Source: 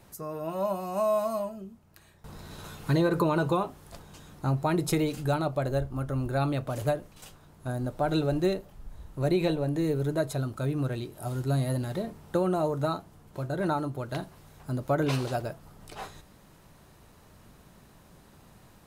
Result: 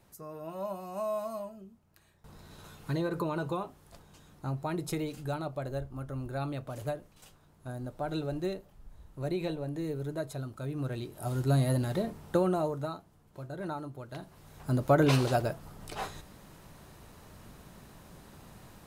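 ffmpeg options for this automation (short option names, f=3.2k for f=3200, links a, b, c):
-af "volume=13dB,afade=t=in:st=10.67:d=0.81:silence=0.375837,afade=t=out:st=12.26:d=0.66:silence=0.316228,afade=t=in:st=14.19:d=0.54:silence=0.251189"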